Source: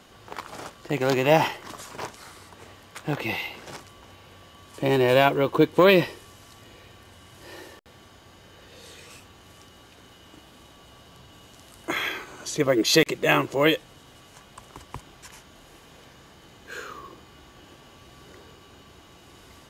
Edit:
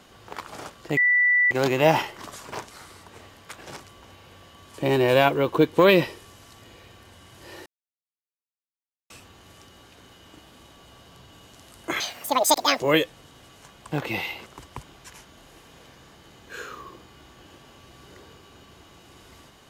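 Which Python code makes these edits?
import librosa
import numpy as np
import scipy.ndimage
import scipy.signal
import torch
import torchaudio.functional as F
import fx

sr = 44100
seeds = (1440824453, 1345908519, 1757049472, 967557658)

y = fx.edit(x, sr, fx.insert_tone(at_s=0.97, length_s=0.54, hz=1970.0, db=-16.0),
    fx.move(start_s=3.07, length_s=0.54, to_s=14.64),
    fx.silence(start_s=7.66, length_s=1.44),
    fx.speed_span(start_s=12.0, length_s=1.52, speed=1.9), tone=tone)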